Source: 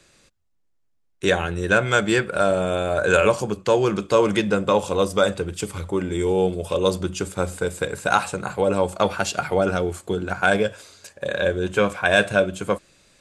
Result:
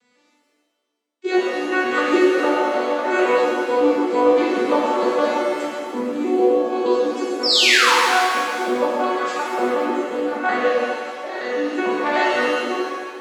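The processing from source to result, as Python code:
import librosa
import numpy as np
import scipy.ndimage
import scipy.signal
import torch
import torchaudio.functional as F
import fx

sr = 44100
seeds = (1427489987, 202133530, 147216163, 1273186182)

y = fx.vocoder_arp(x, sr, chord='minor triad', root=59, every_ms=152)
y = fx.peak_eq(y, sr, hz=6300.0, db=-4.0, octaves=0.24)
y = fx.spec_paint(y, sr, seeds[0], shape='fall', start_s=7.43, length_s=0.5, low_hz=840.0, high_hz=5600.0, level_db=-20.0)
y = fx.low_shelf(y, sr, hz=460.0, db=-5.5)
y = fx.rev_shimmer(y, sr, seeds[1], rt60_s=1.7, semitones=7, shimmer_db=-8, drr_db=-7.5)
y = F.gain(torch.from_numpy(y), -2.0).numpy()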